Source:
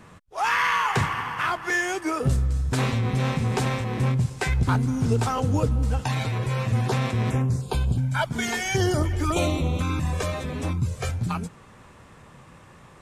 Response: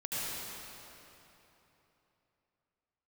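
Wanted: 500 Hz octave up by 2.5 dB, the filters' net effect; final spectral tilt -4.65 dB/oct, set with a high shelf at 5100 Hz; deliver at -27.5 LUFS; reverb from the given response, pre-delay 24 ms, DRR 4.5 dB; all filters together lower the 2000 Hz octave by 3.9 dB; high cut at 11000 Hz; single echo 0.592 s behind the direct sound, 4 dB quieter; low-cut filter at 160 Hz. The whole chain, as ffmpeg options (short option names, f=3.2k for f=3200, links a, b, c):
-filter_complex "[0:a]highpass=160,lowpass=11k,equalizer=f=500:t=o:g=3.5,equalizer=f=2k:t=o:g=-6.5,highshelf=f=5.1k:g=9,aecho=1:1:592:0.631,asplit=2[a][b];[1:a]atrim=start_sample=2205,adelay=24[c];[b][c]afir=irnorm=-1:irlink=0,volume=-10dB[d];[a][d]amix=inputs=2:normalize=0,volume=-3.5dB"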